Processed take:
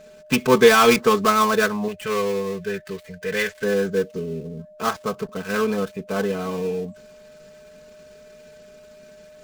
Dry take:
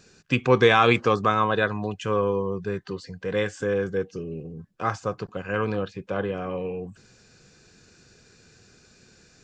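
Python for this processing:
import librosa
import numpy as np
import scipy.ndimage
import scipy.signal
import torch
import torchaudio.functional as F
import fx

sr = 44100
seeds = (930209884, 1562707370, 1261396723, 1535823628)

y = fx.dead_time(x, sr, dead_ms=0.12)
y = y + 0.87 * np.pad(y, (int(4.6 * sr / 1000.0), 0))[:len(y)]
y = y + 10.0 ** (-46.0 / 20.0) * np.sin(2.0 * np.pi * 610.0 * np.arange(len(y)) / sr)
y = fx.graphic_eq(y, sr, hz=(250, 1000, 2000), db=(-8, -6, 7), at=(1.88, 3.64))
y = y * librosa.db_to_amplitude(1.5)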